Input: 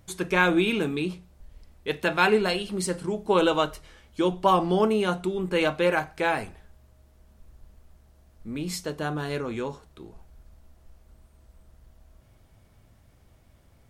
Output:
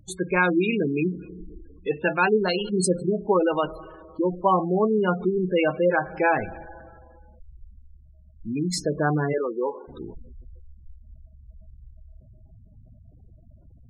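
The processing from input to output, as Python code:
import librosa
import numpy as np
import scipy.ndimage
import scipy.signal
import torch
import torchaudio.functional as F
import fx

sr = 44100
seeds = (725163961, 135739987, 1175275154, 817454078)

y = fx.rev_plate(x, sr, seeds[0], rt60_s=2.6, hf_ratio=0.6, predelay_ms=80, drr_db=17.5)
y = fx.rider(y, sr, range_db=4, speed_s=0.5)
y = fx.spec_gate(y, sr, threshold_db=-15, keep='strong')
y = fx.highpass(y, sr, hz=350.0, slope=24, at=(9.32, 9.87), fade=0.02)
y = y * librosa.db_to_amplitude(3.5)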